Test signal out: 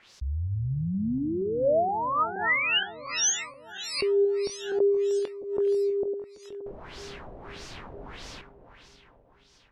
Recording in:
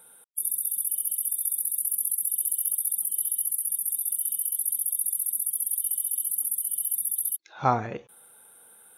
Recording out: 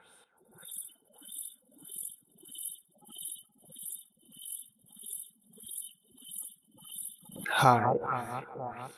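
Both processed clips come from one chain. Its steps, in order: backward echo that repeats 236 ms, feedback 74%, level -12 dB; on a send: repeats whose band climbs or falls 424 ms, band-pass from 1.7 kHz, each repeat 0.7 oct, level -11 dB; on the sum: LFO low-pass sine 1.6 Hz 560–5800 Hz; swell ahead of each attack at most 86 dB/s

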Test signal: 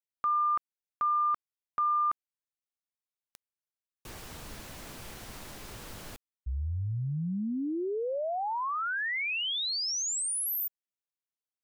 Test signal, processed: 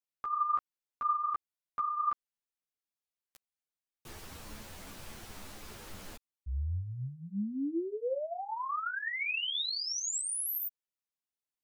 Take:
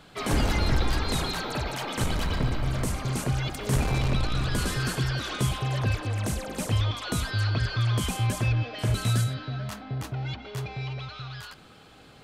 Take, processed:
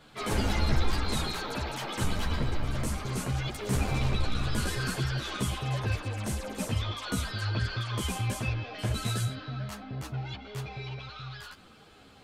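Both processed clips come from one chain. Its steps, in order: three-phase chorus

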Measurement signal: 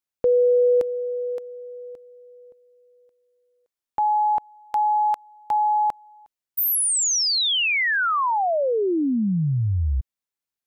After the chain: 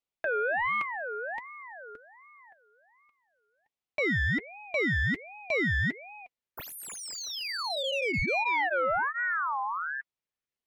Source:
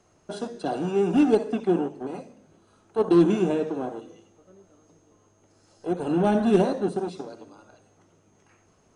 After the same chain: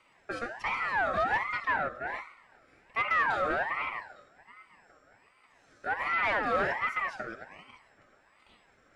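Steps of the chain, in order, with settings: comb of notches 250 Hz; overdrive pedal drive 24 dB, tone 1.3 kHz, clips at -8 dBFS; ring modulator with a swept carrier 1.3 kHz, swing 30%, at 1.3 Hz; trim -9 dB

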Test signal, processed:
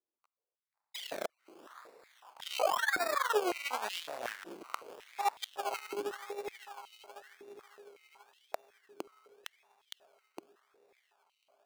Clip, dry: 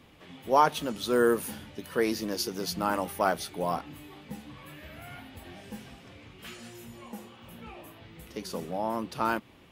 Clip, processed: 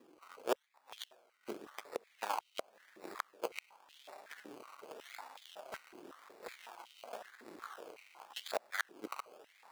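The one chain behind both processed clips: in parallel at +1.5 dB: compression 6:1, threshold -39 dBFS; on the sum: one-sided clip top -32.5 dBFS; flange 1.8 Hz, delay 3.6 ms, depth 9 ms, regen +14%; dynamic bell 5.4 kHz, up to +5 dB, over -49 dBFS, Q 1.1; inverted gate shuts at -23 dBFS, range -37 dB; on a send: echo that smears into a reverb 601 ms, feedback 76%, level -13 dB; on the sum: Chebyshev shaper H 7 -19 dB, 8 -19 dB, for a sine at -13.5 dBFS; decimation with a swept rate 20×, swing 60% 0.9 Hz; step-sequenced high-pass 5.4 Hz 340–3100 Hz

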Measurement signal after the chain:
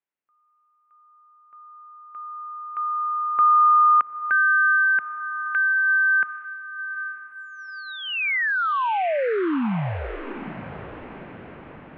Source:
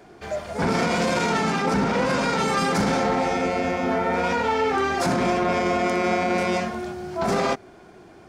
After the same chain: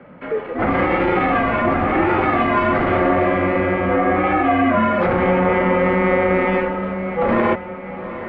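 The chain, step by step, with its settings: mistuned SSB -170 Hz 310–2800 Hz; echo that smears into a reverb 837 ms, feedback 53%, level -12 dB; trim +6.5 dB

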